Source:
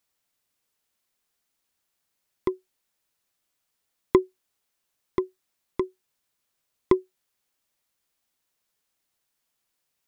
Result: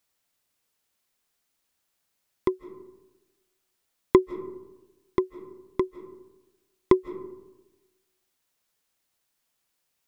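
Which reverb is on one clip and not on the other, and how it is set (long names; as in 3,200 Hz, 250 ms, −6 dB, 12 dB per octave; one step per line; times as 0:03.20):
comb and all-pass reverb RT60 1.1 s, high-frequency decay 0.35×, pre-delay 120 ms, DRR 15.5 dB
level +1.5 dB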